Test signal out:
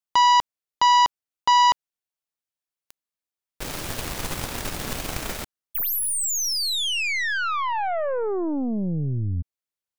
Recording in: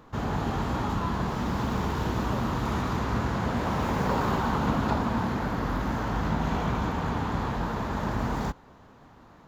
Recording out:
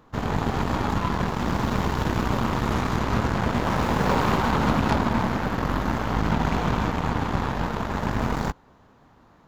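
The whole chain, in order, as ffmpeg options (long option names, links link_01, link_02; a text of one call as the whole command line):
ffmpeg -i in.wav -af "aeval=exprs='0.211*(cos(1*acos(clip(val(0)/0.211,-1,1)))-cos(1*PI/2))+0.0266*(cos(4*acos(clip(val(0)/0.211,-1,1)))-cos(4*PI/2))+0.0473*(cos(5*acos(clip(val(0)/0.211,-1,1)))-cos(5*PI/2))+0.0335*(cos(6*acos(clip(val(0)/0.211,-1,1)))-cos(6*PI/2))+0.0473*(cos(7*acos(clip(val(0)/0.211,-1,1)))-cos(7*PI/2))':channel_layout=same,volume=2.5dB" out.wav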